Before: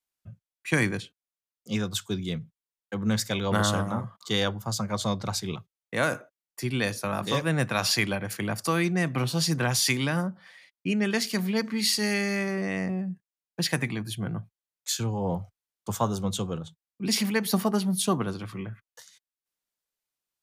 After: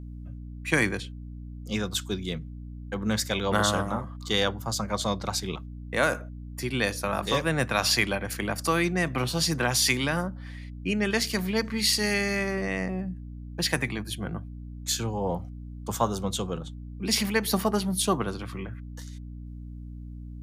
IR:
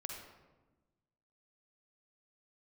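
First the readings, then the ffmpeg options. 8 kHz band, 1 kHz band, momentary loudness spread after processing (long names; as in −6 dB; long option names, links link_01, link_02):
+1.0 dB, +2.0 dB, 18 LU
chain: -af "bass=frequency=250:gain=-6,treble=frequency=4000:gain=-1,aeval=exprs='val(0)+0.01*(sin(2*PI*60*n/s)+sin(2*PI*2*60*n/s)/2+sin(2*PI*3*60*n/s)/3+sin(2*PI*4*60*n/s)/4+sin(2*PI*5*60*n/s)/5)':channel_layout=same,volume=2dB"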